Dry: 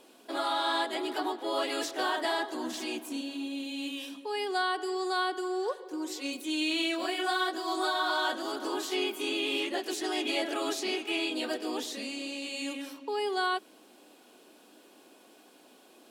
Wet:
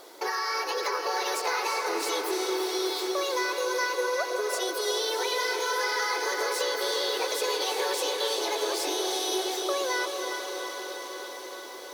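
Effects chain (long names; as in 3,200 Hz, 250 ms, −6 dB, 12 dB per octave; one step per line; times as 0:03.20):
downward compressor, threshold −36 dBFS, peak gain reduction 10 dB
on a send: feedback delay with all-pass diffusion 491 ms, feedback 76%, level −5.5 dB
on the sum: wrong playback speed 33 rpm record played at 45 rpm
level +8.5 dB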